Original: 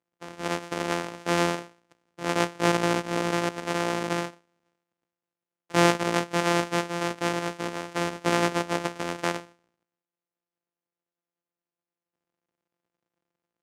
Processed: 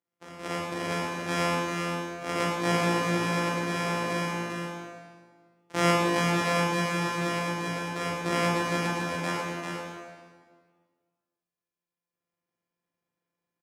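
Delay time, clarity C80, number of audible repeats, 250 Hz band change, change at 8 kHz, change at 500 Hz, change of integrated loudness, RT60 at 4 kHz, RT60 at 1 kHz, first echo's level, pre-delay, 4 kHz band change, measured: 0.396 s, -0.5 dB, 1, -1.0 dB, -2.0 dB, -2.0 dB, -1.0 dB, 1.4 s, 1.7 s, -5.0 dB, 17 ms, -1.0 dB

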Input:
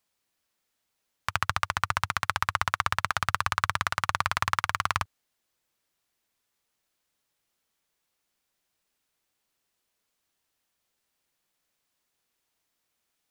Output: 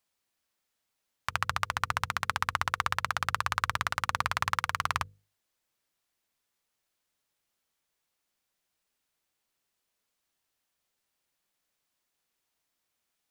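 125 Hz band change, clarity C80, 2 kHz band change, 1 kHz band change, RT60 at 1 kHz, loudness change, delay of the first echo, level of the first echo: -3.5 dB, none, -2.5 dB, -2.5 dB, none, -2.5 dB, none, none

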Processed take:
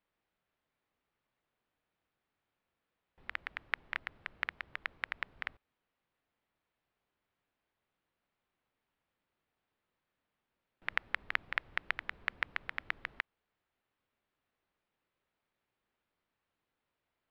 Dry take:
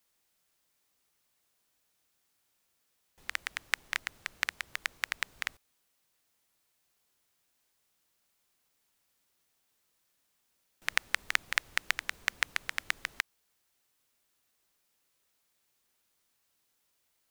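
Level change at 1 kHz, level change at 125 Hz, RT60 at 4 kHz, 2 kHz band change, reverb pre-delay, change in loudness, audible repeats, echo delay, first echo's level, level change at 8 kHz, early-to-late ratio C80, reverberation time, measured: -2.5 dB, n/a, none, -4.0 dB, none, -5.0 dB, none, none, none, under -25 dB, none, none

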